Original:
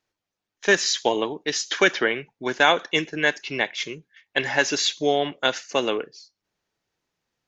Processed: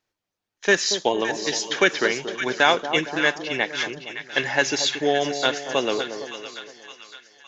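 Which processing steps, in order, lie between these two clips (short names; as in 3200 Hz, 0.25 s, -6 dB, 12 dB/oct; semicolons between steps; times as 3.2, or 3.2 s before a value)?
split-band echo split 1100 Hz, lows 0.231 s, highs 0.564 s, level -9 dB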